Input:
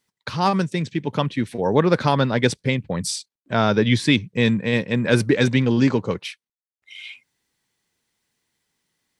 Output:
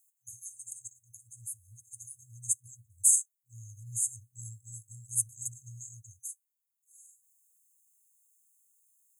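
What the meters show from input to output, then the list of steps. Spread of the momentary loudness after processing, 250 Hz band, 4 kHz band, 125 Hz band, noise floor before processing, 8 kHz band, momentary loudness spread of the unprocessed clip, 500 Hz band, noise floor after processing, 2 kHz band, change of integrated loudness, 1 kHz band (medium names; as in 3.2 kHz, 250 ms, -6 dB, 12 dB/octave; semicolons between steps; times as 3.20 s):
22 LU, under -40 dB, under -40 dB, -25.0 dB, under -85 dBFS, +7.0 dB, 12 LU, under -40 dB, -84 dBFS, under -40 dB, -10.0 dB, under -40 dB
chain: high-pass 80 Hz; FFT band-reject 120–6300 Hz; tilt EQ +4.5 dB/octave; trim -5 dB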